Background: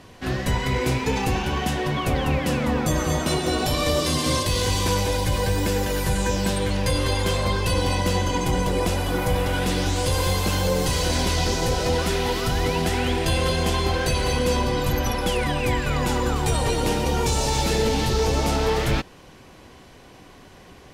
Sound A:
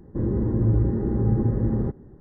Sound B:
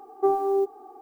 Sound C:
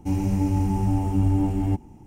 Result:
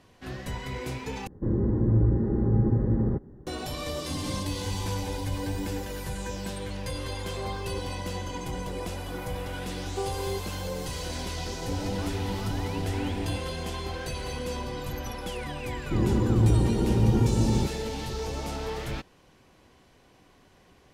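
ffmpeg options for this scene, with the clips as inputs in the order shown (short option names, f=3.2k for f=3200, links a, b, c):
-filter_complex "[1:a]asplit=2[a][b];[3:a]asplit=2[c][d];[2:a]asplit=2[e][f];[0:a]volume=-11.5dB[g];[c]alimiter=limit=-21.5dB:level=0:latency=1:release=71[h];[e]alimiter=limit=-20dB:level=0:latency=1:release=71[i];[d]asoftclip=type=tanh:threshold=-23.5dB[j];[g]asplit=2[k][l];[k]atrim=end=1.274[m];[a]atrim=end=2.2,asetpts=PTS-STARTPTS,volume=-1.5dB[n];[l]atrim=start=3.466[o];[h]atrim=end=2.06,asetpts=PTS-STARTPTS,volume=-6dB,afade=t=in:d=0.004:c=hsin,afade=t=out:st=2.056:d=0.004:c=hsin,adelay=178605S[p];[i]atrim=end=1.01,asetpts=PTS-STARTPTS,volume=-12.5dB,afade=t=in:d=0.004:c=hsin,afade=t=out:st=1.006:d=0.004:c=hsin,adelay=314874S[q];[f]atrim=end=1.01,asetpts=PTS-STARTPTS,volume=-11dB,afade=t=in:d=0.004:c=hsin,afade=t=out:st=1.006:d=0.004:c=hsin,adelay=9740[r];[j]atrim=end=2.06,asetpts=PTS-STARTPTS,volume=-5dB,afade=t=in:d=0.004:c=hsin,afade=t=out:st=2.056:d=0.004:c=hsin,adelay=512442S[s];[b]atrim=end=2.2,asetpts=PTS-STARTPTS,volume=-0.5dB,afade=t=in:d=0.004:c=hsin,afade=t=out:st=2.196:d=0.004:c=hsin,adelay=15760[t];[m][n]acrossfade=d=0.004:c1=hsin:c2=hsin[u];[u][o]acrossfade=d=0.004:c1=hsin:c2=hsin[v];[v][p][q][r][s][t]amix=inputs=6:normalize=0"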